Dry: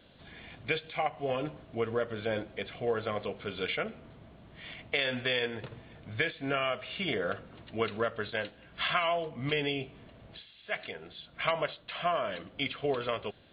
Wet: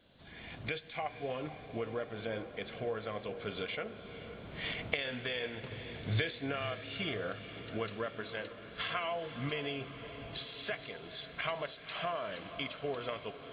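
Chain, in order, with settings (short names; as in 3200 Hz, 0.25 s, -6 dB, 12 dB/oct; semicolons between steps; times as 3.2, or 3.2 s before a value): recorder AGC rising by 18 dB/s; 5.71–6.46 fifteen-band EQ 100 Hz +5 dB, 400 Hz +6 dB, 4000 Hz +9 dB; on a send: diffused feedback echo 0.493 s, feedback 68%, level -12 dB; on the sum: gain -7.5 dB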